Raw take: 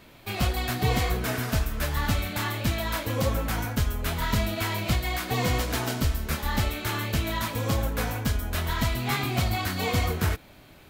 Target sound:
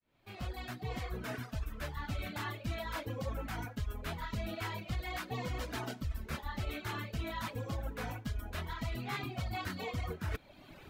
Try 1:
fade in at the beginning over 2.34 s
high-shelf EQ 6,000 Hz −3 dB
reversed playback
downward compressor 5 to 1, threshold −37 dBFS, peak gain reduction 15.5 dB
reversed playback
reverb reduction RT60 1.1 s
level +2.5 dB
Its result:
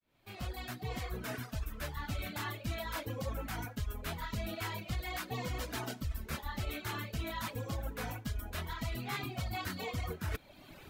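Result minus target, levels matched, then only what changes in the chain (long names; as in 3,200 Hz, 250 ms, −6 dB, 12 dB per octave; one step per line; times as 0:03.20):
8,000 Hz band +4.5 dB
change: high-shelf EQ 6,000 Hz −11 dB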